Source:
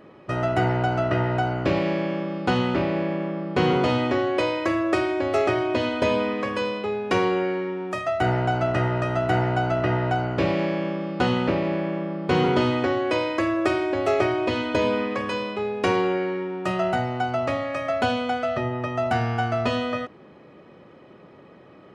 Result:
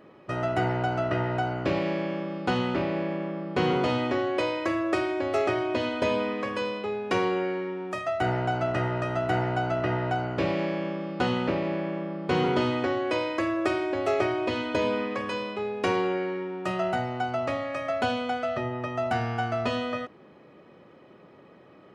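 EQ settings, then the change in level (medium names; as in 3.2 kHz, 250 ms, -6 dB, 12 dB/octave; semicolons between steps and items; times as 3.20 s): bass shelf 110 Hz -4.5 dB; -3.5 dB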